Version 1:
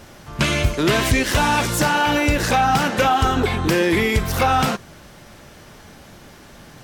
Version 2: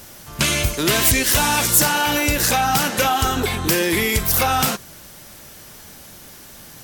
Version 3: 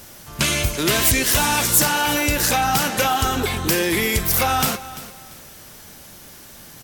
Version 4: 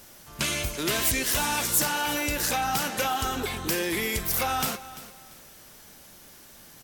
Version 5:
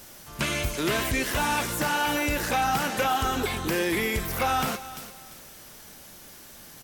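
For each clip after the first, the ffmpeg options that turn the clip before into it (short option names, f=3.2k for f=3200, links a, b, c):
-af "aemphasis=mode=production:type=75fm,volume=-2dB"
-af "aecho=1:1:343|686|1029:0.158|0.0444|0.0124,volume=-1dB"
-af "equalizer=f=98:t=o:w=1.5:g=-4.5,volume=-7.5dB"
-filter_complex "[0:a]acrossover=split=2700[a][b];[b]acompressor=threshold=-35dB:ratio=4:attack=1:release=60[c];[a][c]amix=inputs=2:normalize=0,volume=3dB"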